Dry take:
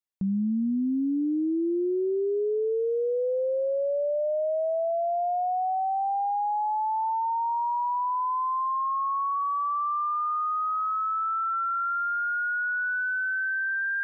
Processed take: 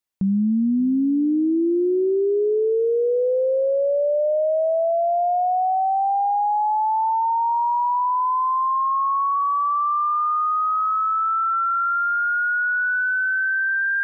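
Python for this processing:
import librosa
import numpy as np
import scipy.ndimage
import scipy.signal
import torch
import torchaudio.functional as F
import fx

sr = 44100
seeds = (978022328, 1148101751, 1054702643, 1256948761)

y = fx.highpass(x, sr, hz=340.0, slope=12, at=(7.99, 8.89), fade=0.02)
y = y + 10.0 ** (-21.0 / 20.0) * np.pad(y, (int(580 * sr / 1000.0), 0))[:len(y)]
y = y * 10.0 ** (6.5 / 20.0)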